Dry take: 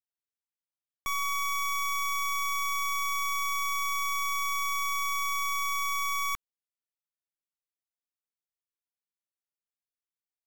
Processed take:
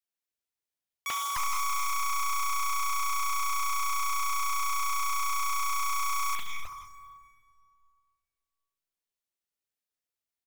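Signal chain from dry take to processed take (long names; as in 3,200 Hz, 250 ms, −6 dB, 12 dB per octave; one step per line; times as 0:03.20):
three-band delay without the direct sound highs, mids, lows 40/300 ms, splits 170/1,100 Hz
dense smooth reverb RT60 2.2 s, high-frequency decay 0.75×, pre-delay 0 ms, DRR 1.5 dB
highs frequency-modulated by the lows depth 0.82 ms
level +1 dB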